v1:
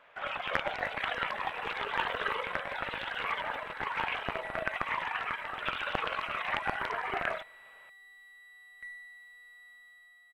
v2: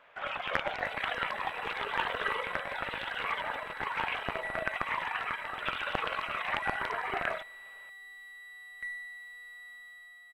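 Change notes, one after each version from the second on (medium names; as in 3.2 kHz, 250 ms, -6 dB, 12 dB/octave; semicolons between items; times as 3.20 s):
second sound +6.0 dB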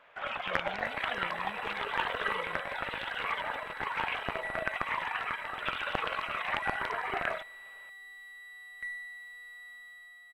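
speech: unmuted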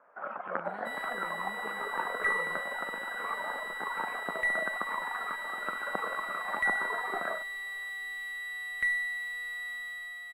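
first sound: add Chebyshev band-pass 190–1400 Hz, order 3; second sound +10.5 dB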